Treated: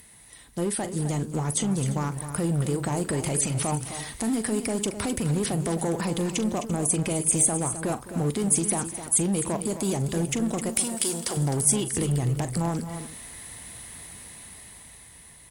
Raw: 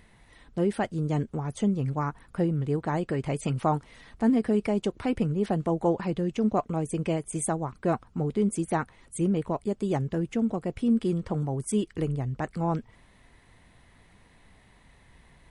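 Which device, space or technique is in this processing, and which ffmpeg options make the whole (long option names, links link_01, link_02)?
FM broadcast chain: -filter_complex "[0:a]highpass=48,dynaudnorm=framelen=360:gausssize=9:maxgain=10dB,acrossover=split=930|5800[link_01][link_02][link_03];[link_01]acompressor=threshold=-19dB:ratio=4[link_04];[link_02]acompressor=threshold=-36dB:ratio=4[link_05];[link_03]acompressor=threshold=-49dB:ratio=4[link_06];[link_04][link_05][link_06]amix=inputs=3:normalize=0,aemphasis=mode=production:type=50fm,alimiter=limit=-18dB:level=0:latency=1:release=64,asoftclip=type=hard:threshold=-21.5dB,lowpass=frequency=15000:width=0.5412,lowpass=frequency=15000:width=1.3066,aemphasis=mode=production:type=50fm,asettb=1/sr,asplit=3[link_07][link_08][link_09];[link_07]atrim=end=10.694[link_10];[link_08]atrim=start=10.69:end=11.37,asetpts=PTS-STARTPTS,afade=type=in:duration=0.004:curve=qsin,afade=type=out:start_time=0.676:duration=0.004:curve=qsin,bass=frequency=250:gain=-15,treble=frequency=4000:gain=8[link_11];[link_09]atrim=start=11.366[link_12];[link_10][link_11]acrossfade=duration=0.004:curve1=hsin:curve2=qsin[link_13];[link_13][link_12]acrossfade=duration=0.004:curve1=qsin:curve2=hsin,aecho=1:1:41|210|259|342:0.211|0.133|0.299|0.119"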